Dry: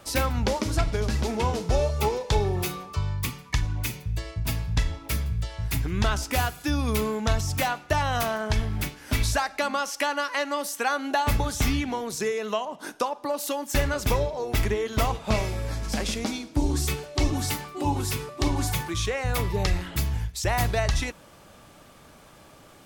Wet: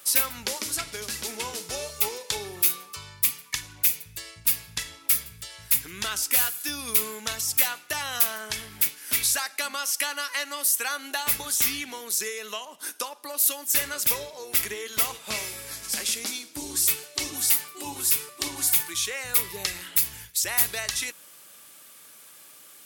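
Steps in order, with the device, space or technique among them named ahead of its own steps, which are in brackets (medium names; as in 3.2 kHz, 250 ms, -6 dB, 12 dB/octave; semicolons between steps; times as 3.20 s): FFT filter 290 Hz 0 dB, 490 Hz -2 dB, 710 Hz -9 dB, 6.3 kHz +5 dB, 11 kHz +15 dB; filter by subtraction (in parallel: low-pass 1.6 kHz 12 dB/octave + polarity flip)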